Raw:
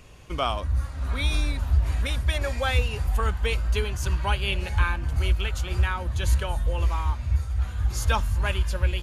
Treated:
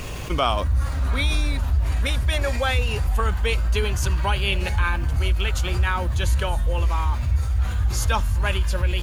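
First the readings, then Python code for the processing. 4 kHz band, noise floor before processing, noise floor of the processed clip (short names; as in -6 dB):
+4.0 dB, -34 dBFS, -26 dBFS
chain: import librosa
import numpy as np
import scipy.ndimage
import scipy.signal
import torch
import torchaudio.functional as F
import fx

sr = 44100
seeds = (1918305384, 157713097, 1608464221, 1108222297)

y = fx.rider(x, sr, range_db=4, speed_s=0.5)
y = fx.quant_dither(y, sr, seeds[0], bits=10, dither='none')
y = fx.env_flatten(y, sr, amount_pct=50)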